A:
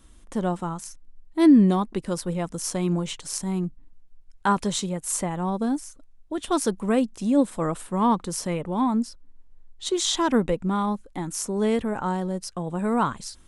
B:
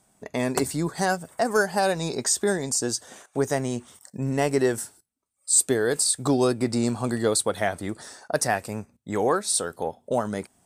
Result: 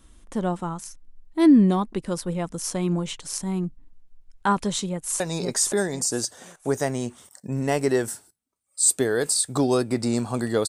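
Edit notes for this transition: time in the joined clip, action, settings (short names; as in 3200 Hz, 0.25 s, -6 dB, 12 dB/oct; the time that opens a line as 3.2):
A
4.88–5.2 echo throw 0.52 s, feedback 30%, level -2.5 dB
5.2 switch to B from 1.9 s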